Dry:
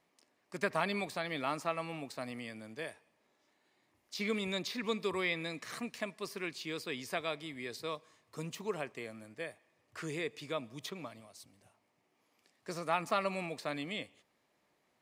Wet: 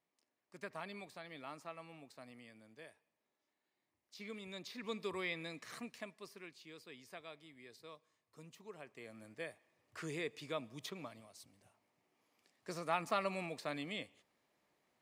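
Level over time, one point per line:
0:04.43 −13.5 dB
0:05.00 −6.5 dB
0:05.80 −6.5 dB
0:06.58 −15 dB
0:08.75 −15 dB
0:09.26 −3.5 dB

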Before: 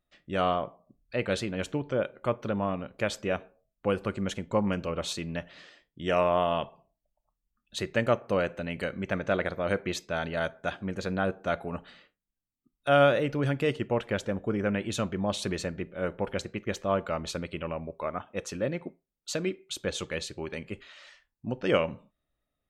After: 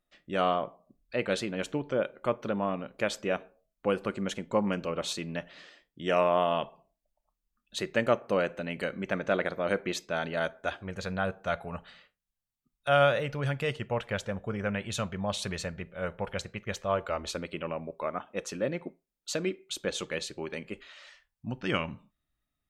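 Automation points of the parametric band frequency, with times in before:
parametric band −12 dB 0.85 octaves
0:10.43 88 Hz
0:10.99 310 Hz
0:16.81 310 Hz
0:17.56 90 Hz
0:20.67 90 Hz
0:21.59 520 Hz

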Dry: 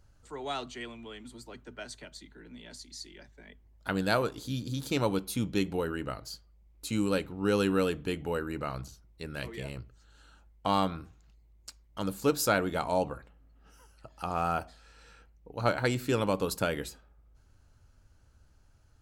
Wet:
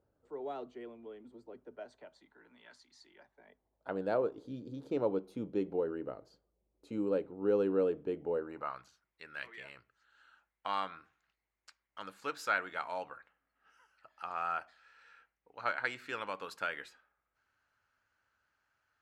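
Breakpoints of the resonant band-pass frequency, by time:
resonant band-pass, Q 1.6
0:01.57 450 Hz
0:02.72 1,300 Hz
0:04.21 460 Hz
0:08.36 460 Hz
0:08.82 1,700 Hz

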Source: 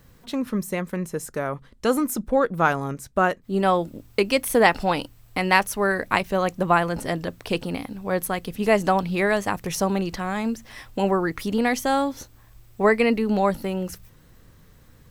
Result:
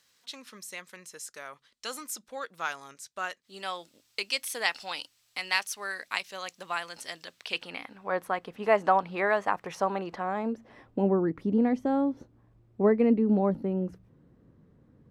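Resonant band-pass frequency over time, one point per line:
resonant band-pass, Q 1
0:07.24 4,900 Hz
0:08.20 1,000 Hz
0:09.95 1,000 Hz
0:11.05 260 Hz

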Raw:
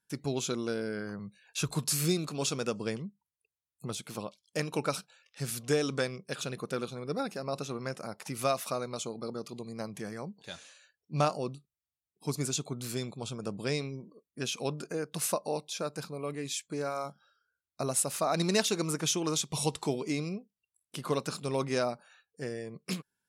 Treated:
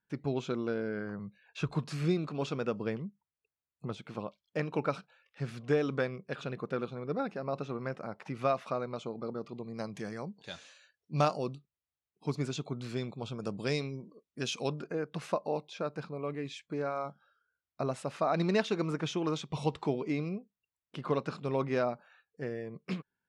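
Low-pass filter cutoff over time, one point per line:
2,300 Hz
from 0:09.74 5,700 Hz
from 0:11.55 3,200 Hz
from 0:13.38 6,000 Hz
from 0:14.80 2,500 Hz

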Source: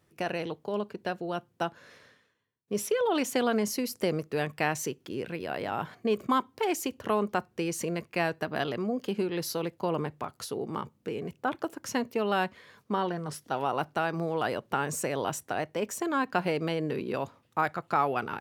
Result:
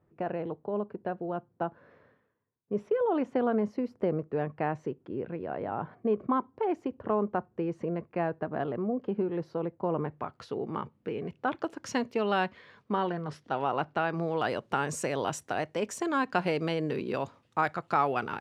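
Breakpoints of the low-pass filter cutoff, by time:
0:09.83 1,100 Hz
0:10.39 2,600 Hz
0:11.13 2,600 Hz
0:11.93 6,300 Hz
0:12.92 3,300 Hz
0:14.10 3,300 Hz
0:14.59 7,900 Hz

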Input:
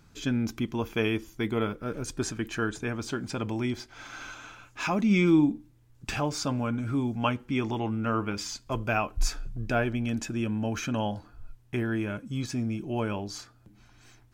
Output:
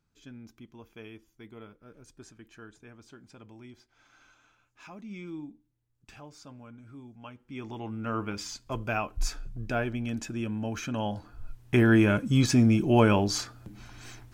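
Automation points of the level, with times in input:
0:07.31 −19 dB
0:07.61 −10.5 dB
0:08.20 −3 dB
0:10.93 −3 dB
0:11.90 +9.5 dB

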